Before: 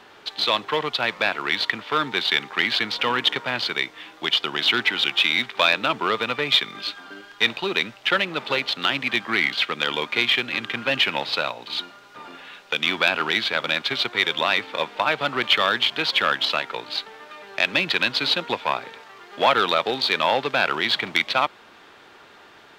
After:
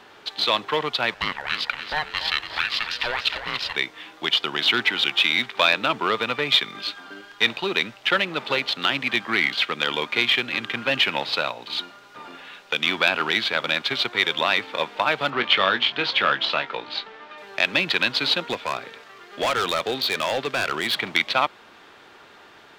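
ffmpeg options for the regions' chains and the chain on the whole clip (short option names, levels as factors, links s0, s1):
-filter_complex "[0:a]asettb=1/sr,asplit=3[s0][s1][s2];[s0]atrim=end=1.144[s3];[s1]atrim=start=1.14:end=3.76,asetpts=PTS-STARTPTS,afade=t=in:d=0.004:c=qsin,afade=t=out:st=2.616:d=0.004:c=qsin,highpass=680,aeval=exprs='val(0)*sin(2*PI*470*n/s)':c=same,asplit=6[s4][s5][s6][s7][s8][s9];[s5]adelay=285,afreqshift=36,volume=0.335[s10];[s6]adelay=570,afreqshift=72,volume=0.148[s11];[s7]adelay=855,afreqshift=108,volume=0.0646[s12];[s8]adelay=1140,afreqshift=144,volume=0.0285[s13];[s9]adelay=1425,afreqshift=180,volume=0.0126[s14];[s4][s10][s11][s12][s13][s14]amix=inputs=6:normalize=0,atrim=end_sample=115542[s15];[s2]atrim=start=3.756[s16];[s3][s15]acrossfade=d=0.004:c1=hsin:c2=qsin[s17];[s17][s16]acrossfade=d=0.004:c1=qsin:c2=hsin,asettb=1/sr,asplit=3[s18][s19][s20];[s18]atrim=end=15.304[s21];[s19]atrim=start=15.3:end=17.38,asetpts=PTS-STARTPTS,afade=t=in:d=0.004:c=qsin,afade=t=out:st=2.076:d=0.004:c=qsin,lowpass=4200,asplit=2[s22][s23];[s23]adelay=21,volume=0.355[s24];[s22][s24]amix=inputs=2:normalize=0,atrim=end_sample=91728[s25];[s20]atrim=start=17.376[s26];[s21][s25]acrossfade=d=0.004:c1=hsin:c2=qsin[s27];[s27][s26]acrossfade=d=0.004:c1=qsin:c2=hsin,asettb=1/sr,asplit=3[s28][s29][s30];[s28]atrim=end=18.474[s31];[s29]atrim=start=18.47:end=20.97,asetpts=PTS-STARTPTS,afade=t=in:d=0.004:c=qsin,afade=t=out:st=2.496:d=0.004:c=qsin,equalizer=f=880:t=o:w=0.24:g=-8.5,asoftclip=type=hard:threshold=0.119[s32];[s30]atrim=start=20.966[s33];[s31][s32]acrossfade=d=0.004:c1=hsin:c2=qsin[s34];[s34][s33]acrossfade=d=0.004:c1=qsin:c2=hsin"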